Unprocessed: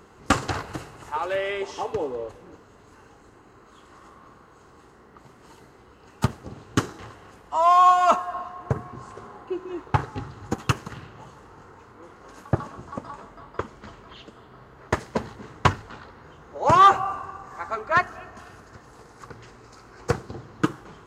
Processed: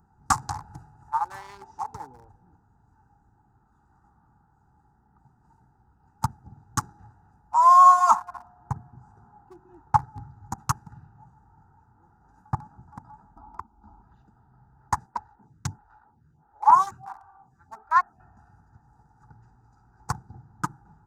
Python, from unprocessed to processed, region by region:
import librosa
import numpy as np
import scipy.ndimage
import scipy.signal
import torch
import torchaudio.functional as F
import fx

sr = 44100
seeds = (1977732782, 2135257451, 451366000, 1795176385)

y = fx.chain(x, sr, fx.high_shelf(hz=4600.0, db=-11.0),
    fx.fixed_phaser(hz=510.0, stages=6),
    fx.band_squash(depth_pct=100), at=(13.36, 14.02))
y = fx.chain(y, sr, fx.low_shelf(hz=140.0, db=-4.5),
    fx.stagger_phaser(hz=1.5), at=(15.06, 18.2))
y = fx.wiener(y, sr, points=41)
y = fx.curve_eq(y, sr, hz=(160.0, 580.0, 850.0, 2900.0, 5500.0, 10000.0), db=(0, -22, 14, -13, 9, 12))
y = F.gain(torch.from_numpy(y), -5.0).numpy()